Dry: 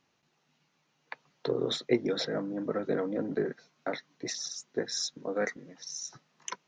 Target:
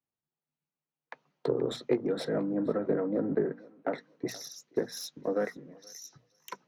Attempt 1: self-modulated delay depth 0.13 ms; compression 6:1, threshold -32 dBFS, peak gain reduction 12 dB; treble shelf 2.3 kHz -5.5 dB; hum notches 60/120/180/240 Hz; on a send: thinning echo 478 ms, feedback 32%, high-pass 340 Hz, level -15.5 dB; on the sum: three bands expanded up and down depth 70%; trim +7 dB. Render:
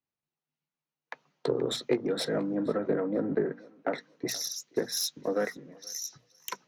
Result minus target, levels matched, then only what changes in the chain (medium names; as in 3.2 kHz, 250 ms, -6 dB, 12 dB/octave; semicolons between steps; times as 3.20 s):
4 kHz band +7.5 dB
change: treble shelf 2.3 kHz -16.5 dB